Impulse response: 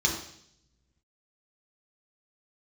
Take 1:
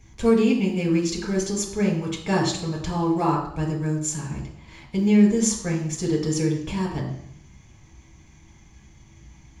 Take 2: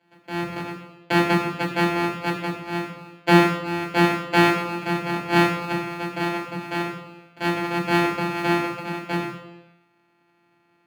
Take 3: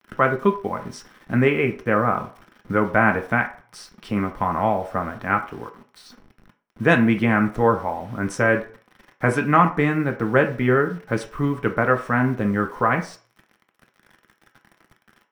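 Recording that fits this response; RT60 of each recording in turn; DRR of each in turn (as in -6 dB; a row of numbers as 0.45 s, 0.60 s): 1; 0.70 s, 0.95 s, 0.45 s; -2.0 dB, -3.0 dB, 4.0 dB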